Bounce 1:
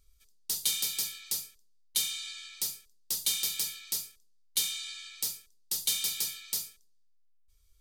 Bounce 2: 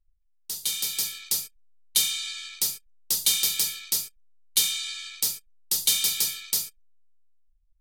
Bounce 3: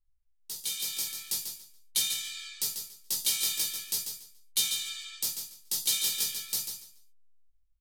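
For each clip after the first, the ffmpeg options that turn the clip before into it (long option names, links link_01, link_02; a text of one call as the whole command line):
ffmpeg -i in.wav -af "anlmdn=0.00398,dynaudnorm=framelen=260:gausssize=7:maxgain=10dB,volume=-2.5dB" out.wav
ffmpeg -i in.wav -af "flanger=delay=15.5:depth=2.5:speed=0.45,aecho=1:1:142|284|426:0.447|0.0938|0.0197,volume=-2.5dB" out.wav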